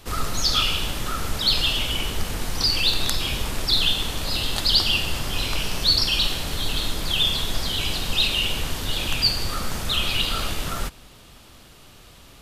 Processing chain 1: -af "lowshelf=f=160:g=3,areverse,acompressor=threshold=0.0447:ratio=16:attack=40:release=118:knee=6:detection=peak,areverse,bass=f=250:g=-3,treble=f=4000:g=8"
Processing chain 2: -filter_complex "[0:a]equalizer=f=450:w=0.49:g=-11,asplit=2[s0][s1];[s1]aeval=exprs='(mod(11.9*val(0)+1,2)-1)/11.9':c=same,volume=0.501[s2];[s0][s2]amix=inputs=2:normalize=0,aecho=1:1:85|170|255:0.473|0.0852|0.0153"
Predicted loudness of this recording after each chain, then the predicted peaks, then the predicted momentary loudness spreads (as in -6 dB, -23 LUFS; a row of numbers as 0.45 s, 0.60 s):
-26.0 LUFS, -21.5 LUFS; -6.0 dBFS, -4.0 dBFS; 12 LU, 8 LU